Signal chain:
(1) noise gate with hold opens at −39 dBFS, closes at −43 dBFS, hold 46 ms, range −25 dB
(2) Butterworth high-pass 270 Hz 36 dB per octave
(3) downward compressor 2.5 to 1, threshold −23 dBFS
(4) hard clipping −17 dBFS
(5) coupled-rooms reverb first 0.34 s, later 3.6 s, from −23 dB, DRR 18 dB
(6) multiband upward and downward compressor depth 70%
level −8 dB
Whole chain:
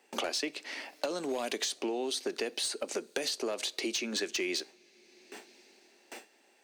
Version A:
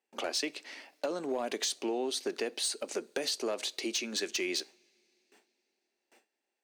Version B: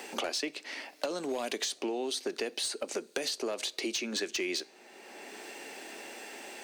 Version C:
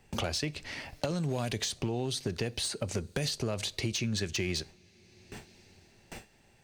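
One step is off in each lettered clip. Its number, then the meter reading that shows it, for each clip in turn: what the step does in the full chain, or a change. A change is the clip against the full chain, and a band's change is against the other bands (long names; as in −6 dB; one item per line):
6, change in crest factor −8.0 dB
1, change in momentary loudness spread −6 LU
2, 250 Hz band +4.0 dB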